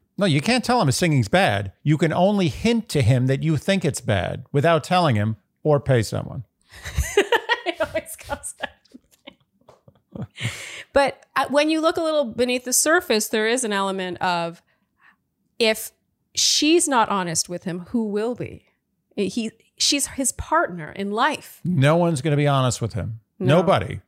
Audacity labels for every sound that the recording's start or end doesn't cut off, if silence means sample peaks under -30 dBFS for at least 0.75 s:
10.150000	14.510000	sound